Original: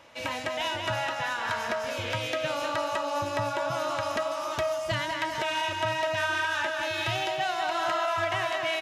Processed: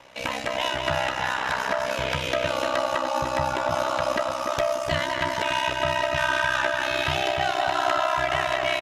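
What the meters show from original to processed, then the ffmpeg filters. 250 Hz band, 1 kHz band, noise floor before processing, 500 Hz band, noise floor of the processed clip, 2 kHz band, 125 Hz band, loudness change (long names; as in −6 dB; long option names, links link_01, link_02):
+4.5 dB, +4.5 dB, −34 dBFS, +4.5 dB, −30 dBFS, +4.0 dB, +3.5 dB, +4.0 dB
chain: -filter_complex "[0:a]asplit=2[link_01][link_02];[link_02]adelay=296,lowpass=frequency=2000:poles=1,volume=-6dB,asplit=2[link_03][link_04];[link_04]adelay=296,lowpass=frequency=2000:poles=1,volume=0.43,asplit=2[link_05][link_06];[link_06]adelay=296,lowpass=frequency=2000:poles=1,volume=0.43,asplit=2[link_07][link_08];[link_08]adelay=296,lowpass=frequency=2000:poles=1,volume=0.43,asplit=2[link_09][link_10];[link_10]adelay=296,lowpass=frequency=2000:poles=1,volume=0.43[link_11];[link_01][link_03][link_05][link_07][link_09][link_11]amix=inputs=6:normalize=0,aeval=exprs='val(0)*sin(2*PI*32*n/s)':channel_layout=same,volume=6.5dB"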